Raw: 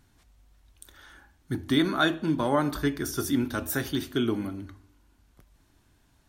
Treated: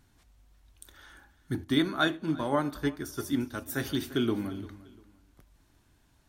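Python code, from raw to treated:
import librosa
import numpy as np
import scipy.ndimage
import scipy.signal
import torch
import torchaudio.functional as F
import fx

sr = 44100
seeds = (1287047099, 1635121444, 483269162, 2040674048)

y = fx.echo_feedback(x, sr, ms=347, feedback_pct=29, wet_db=-18.5)
y = fx.upward_expand(y, sr, threshold_db=-39.0, expansion=1.5, at=(1.63, 3.77), fade=0.02)
y = y * 10.0 ** (-1.5 / 20.0)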